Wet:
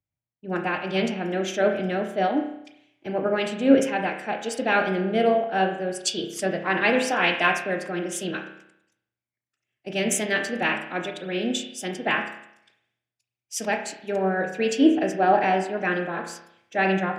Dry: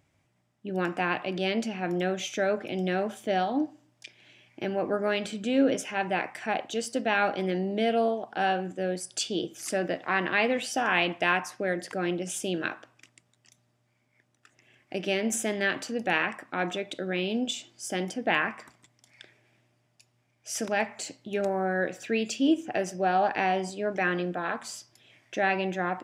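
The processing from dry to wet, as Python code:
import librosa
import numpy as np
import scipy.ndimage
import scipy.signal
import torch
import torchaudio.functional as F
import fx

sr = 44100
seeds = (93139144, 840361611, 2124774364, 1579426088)

y = fx.rev_spring(x, sr, rt60_s=1.7, pass_ms=(47,), chirp_ms=70, drr_db=3.5)
y = fx.stretch_vocoder(y, sr, factor=0.66)
y = fx.band_widen(y, sr, depth_pct=70)
y = y * librosa.db_to_amplitude(3.0)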